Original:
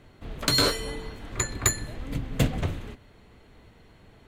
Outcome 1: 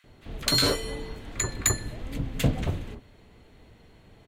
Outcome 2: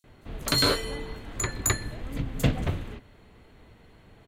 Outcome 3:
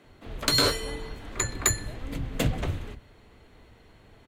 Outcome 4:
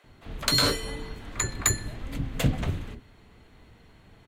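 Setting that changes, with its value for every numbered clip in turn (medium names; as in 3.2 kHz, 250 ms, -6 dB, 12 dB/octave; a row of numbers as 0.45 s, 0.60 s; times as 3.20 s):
bands offset in time, split: 1.3 kHz, 5.6 kHz, 170 Hz, 490 Hz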